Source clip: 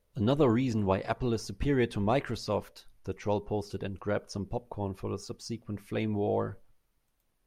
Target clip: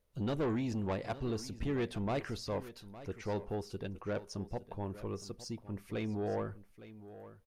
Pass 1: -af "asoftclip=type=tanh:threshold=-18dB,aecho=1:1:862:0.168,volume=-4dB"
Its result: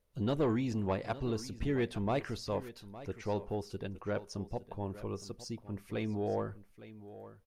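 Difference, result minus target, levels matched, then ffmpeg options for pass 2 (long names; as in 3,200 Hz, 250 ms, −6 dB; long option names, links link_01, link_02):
soft clipping: distortion −8 dB
-af "asoftclip=type=tanh:threshold=-24.5dB,aecho=1:1:862:0.168,volume=-4dB"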